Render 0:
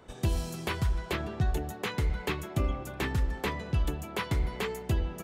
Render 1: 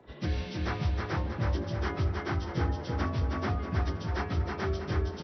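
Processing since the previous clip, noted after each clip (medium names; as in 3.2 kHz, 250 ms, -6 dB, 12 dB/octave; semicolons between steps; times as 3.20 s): frequency axis rescaled in octaves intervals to 77%; feedback delay 320 ms, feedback 46%, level -3.5 dB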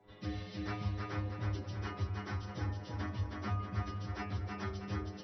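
inharmonic resonator 100 Hz, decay 0.32 s, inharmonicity 0.002; trim +2.5 dB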